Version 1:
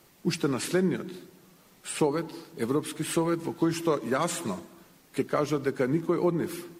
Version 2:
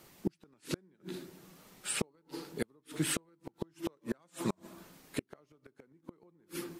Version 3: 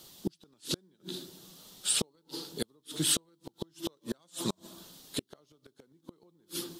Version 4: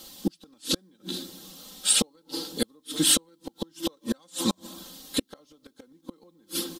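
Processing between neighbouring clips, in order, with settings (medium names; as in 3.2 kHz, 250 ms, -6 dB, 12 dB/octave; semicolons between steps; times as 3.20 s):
inverted gate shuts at -20 dBFS, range -38 dB
resonant high shelf 2.8 kHz +7 dB, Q 3
comb 3.8 ms, depth 72%; trim +5.5 dB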